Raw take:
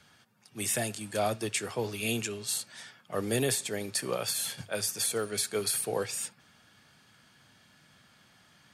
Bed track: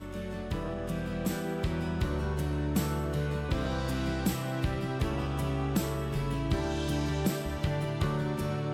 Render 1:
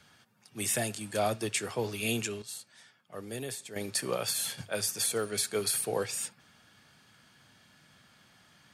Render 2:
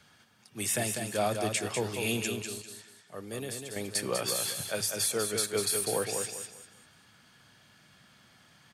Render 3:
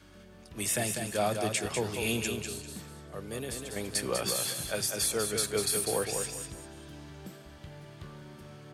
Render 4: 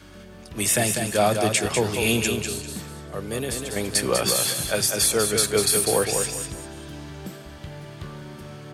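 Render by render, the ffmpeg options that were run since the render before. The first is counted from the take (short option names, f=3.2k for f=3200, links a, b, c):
-filter_complex "[0:a]asplit=3[a][b][c];[a]atrim=end=2.422[d];[b]atrim=start=2.418:end=3.762,asetpts=PTS-STARTPTS,volume=-10dB[e];[c]atrim=start=3.758[f];[d][e]acrossfade=d=0.004:c1=hsin:c2=hsin[g];[g][f]acrossfade=d=0.004:c1=hsin:c2=hsin"
-af "aecho=1:1:197|394|591|788:0.531|0.154|0.0446|0.0129"
-filter_complex "[1:a]volume=-16.5dB[a];[0:a][a]amix=inputs=2:normalize=0"
-af "volume=9dB"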